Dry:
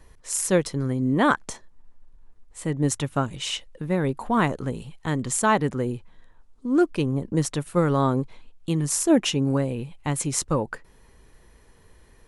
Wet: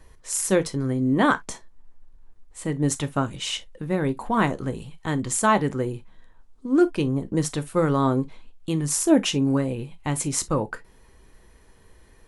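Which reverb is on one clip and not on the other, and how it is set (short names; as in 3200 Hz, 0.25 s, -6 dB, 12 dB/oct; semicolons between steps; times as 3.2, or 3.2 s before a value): non-linear reverb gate 80 ms falling, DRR 10 dB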